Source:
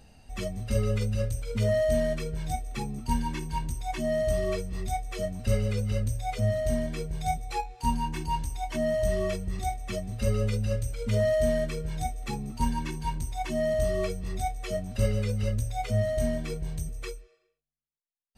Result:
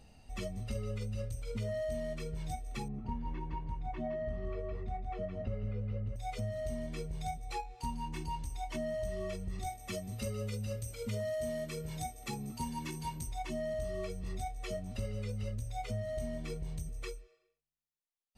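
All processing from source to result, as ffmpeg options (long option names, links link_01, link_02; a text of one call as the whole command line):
ffmpeg -i in.wav -filter_complex "[0:a]asettb=1/sr,asplit=3[link_01][link_02][link_03];[link_01]atrim=end=2.884[link_04];[link_02]atrim=start=2.88:end=6.16,asetpts=PTS-STARTPTS,afade=type=in:duration=0.004:curve=qsin,afade=type=out:start_time=3.276:duration=0.004:curve=qsin,lowpass=1700,aecho=1:1:164:0.562,atrim=end_sample=144648[link_05];[link_03]atrim=start=6.156[link_06];[link_04][link_05]acrossfade=duration=0.004:curve1=hsin:curve2=qsin[link_07];[link_07][link_06]acrossfade=duration=0.004:curve1=qsin:curve2=hsin,asettb=1/sr,asplit=3[link_08][link_09][link_10];[link_08]atrim=end=9.664[link_11];[link_09]atrim=start=9.66:end=13.27,asetpts=PTS-STARTPTS,afade=type=in:duration=0.004:curve=qsin,afade=type=out:start_time=3.606:duration=0.004:curve=qsin,highshelf=frequency=6200:gain=8,aeval=exprs='val(0)+0.00126*sin(2*PI*12000*n/s)':channel_layout=same,highpass=82[link_12];[link_10]atrim=start=13.266[link_13];[link_11][link_12]acrossfade=duration=0.004:curve1=hsin:curve2=qsin[link_14];[link_14][link_13]acrossfade=duration=0.004:curve1=qsin:curve2=hsin,highshelf=frequency=11000:gain=-4,bandreject=frequency=1600:width=10,acompressor=threshold=-31dB:ratio=4,volume=-4dB" out.wav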